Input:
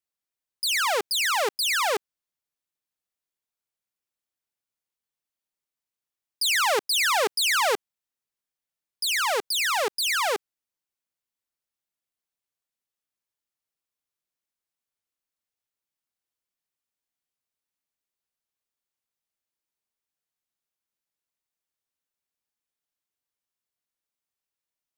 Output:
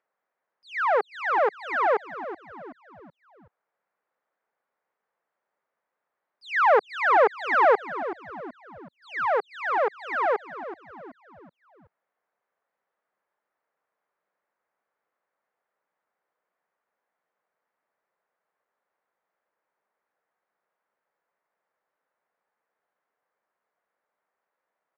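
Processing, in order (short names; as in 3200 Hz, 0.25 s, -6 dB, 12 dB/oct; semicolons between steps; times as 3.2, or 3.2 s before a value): Chebyshev high-pass 170 Hz, order 3; expander -17 dBFS; band shelf 950 Hz +14 dB 2.6 oct; upward compressor, threshold -47 dBFS; tape spacing loss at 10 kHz 38 dB; on a send: frequency-shifting echo 0.377 s, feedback 45%, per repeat -83 Hz, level -13 dB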